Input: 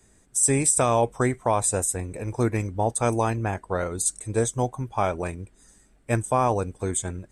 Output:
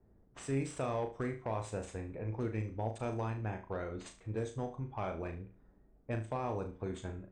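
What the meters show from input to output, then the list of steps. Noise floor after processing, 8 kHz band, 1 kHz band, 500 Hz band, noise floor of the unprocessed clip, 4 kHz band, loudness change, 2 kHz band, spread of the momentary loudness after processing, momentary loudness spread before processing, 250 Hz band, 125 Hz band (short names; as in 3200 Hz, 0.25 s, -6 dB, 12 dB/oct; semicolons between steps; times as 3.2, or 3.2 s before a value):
-65 dBFS, -30.0 dB, -15.5 dB, -13.0 dB, -59 dBFS, -14.5 dB, -14.5 dB, -13.5 dB, 7 LU, 9 LU, -11.5 dB, -11.0 dB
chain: median filter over 3 samples; low-pass opened by the level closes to 730 Hz, open at -20.5 dBFS; dynamic EQ 970 Hz, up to -4 dB, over -36 dBFS, Q 0.92; compressor 1.5:1, threshold -40 dBFS, peak gain reduction 8 dB; hard clip -23.5 dBFS, distortion -21 dB; air absorption 150 m; flutter echo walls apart 6.3 m, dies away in 0.33 s; gain -5 dB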